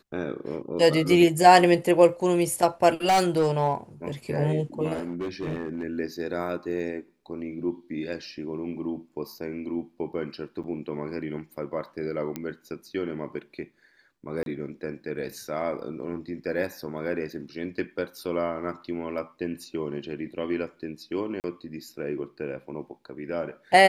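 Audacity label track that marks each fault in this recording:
3.040000	3.730000	clipped -16.5 dBFS
4.930000	5.840000	clipped -26.5 dBFS
10.630000	10.640000	gap 7.9 ms
12.360000	12.360000	pop -17 dBFS
14.430000	14.460000	gap 32 ms
21.400000	21.440000	gap 39 ms

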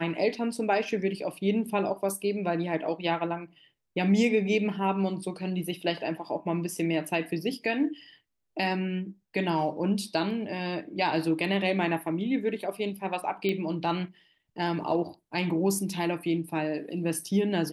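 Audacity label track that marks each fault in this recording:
13.490000	13.490000	pop -17 dBFS

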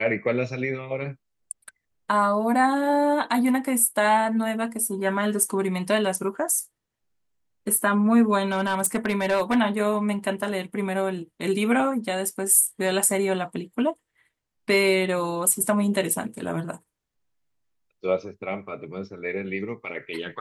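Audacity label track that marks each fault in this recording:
8.520000	9.570000	clipped -17 dBFS

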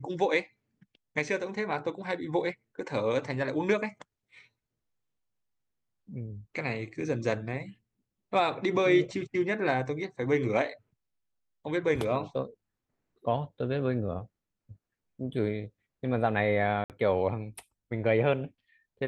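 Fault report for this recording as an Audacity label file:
16.840000	16.900000	gap 58 ms

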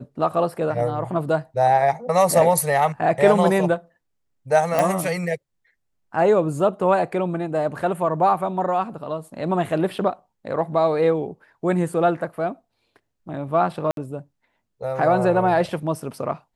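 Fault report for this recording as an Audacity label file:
4.790000	4.790000	pop
13.910000	13.970000	gap 62 ms

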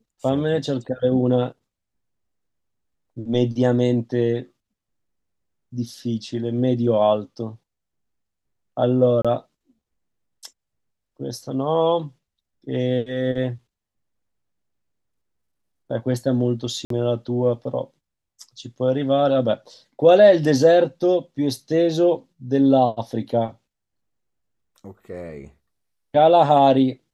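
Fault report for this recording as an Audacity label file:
9.220000	9.250000	gap 26 ms
16.850000	16.900000	gap 53 ms

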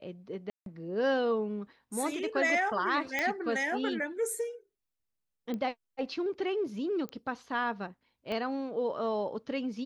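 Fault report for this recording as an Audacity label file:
0.500000	0.660000	gap 0.162 s
3.190000	3.190000	pop -16 dBFS
5.540000	5.540000	pop -24 dBFS
7.090000	7.090000	pop -27 dBFS
8.320000	8.320000	pop -24 dBFS

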